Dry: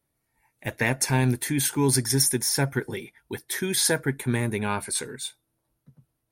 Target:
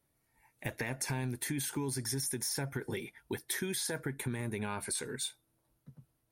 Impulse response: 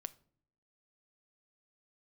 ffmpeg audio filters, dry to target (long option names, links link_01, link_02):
-af "alimiter=limit=-17dB:level=0:latency=1:release=29,acompressor=threshold=-33dB:ratio=6"